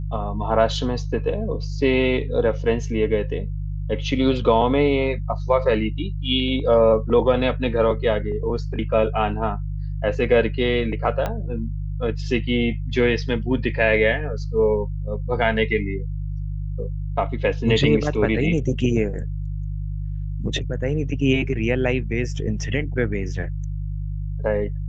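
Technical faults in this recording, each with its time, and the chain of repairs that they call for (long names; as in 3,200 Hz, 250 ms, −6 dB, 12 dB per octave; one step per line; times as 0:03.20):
mains hum 50 Hz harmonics 3 −27 dBFS
0:11.26: click −12 dBFS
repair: click removal
hum removal 50 Hz, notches 3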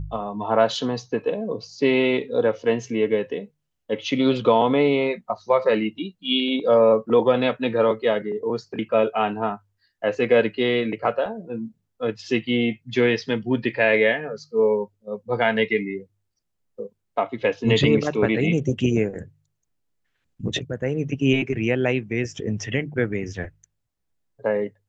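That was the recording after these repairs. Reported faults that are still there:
0:11.26: click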